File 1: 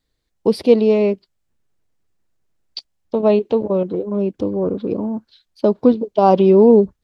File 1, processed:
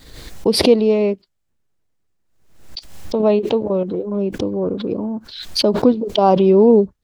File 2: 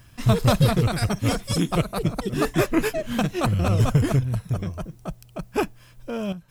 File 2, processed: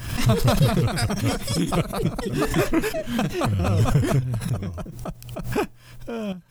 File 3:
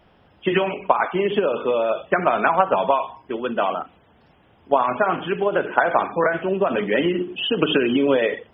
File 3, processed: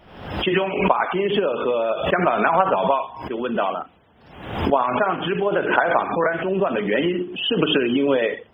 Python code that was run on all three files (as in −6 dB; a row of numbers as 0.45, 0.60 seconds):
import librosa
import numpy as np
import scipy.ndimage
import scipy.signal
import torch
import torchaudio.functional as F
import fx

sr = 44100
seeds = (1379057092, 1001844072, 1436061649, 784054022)

y = fx.pre_swell(x, sr, db_per_s=71.0)
y = F.gain(torch.from_numpy(y), -1.0).numpy()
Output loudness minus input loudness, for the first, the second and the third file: −0.5, 0.0, 0.0 LU